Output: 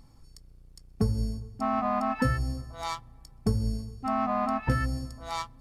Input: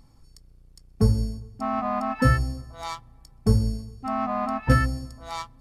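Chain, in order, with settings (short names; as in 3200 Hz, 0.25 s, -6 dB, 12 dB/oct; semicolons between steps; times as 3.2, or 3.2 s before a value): compressor 6:1, threshold -22 dBFS, peak gain reduction 9.5 dB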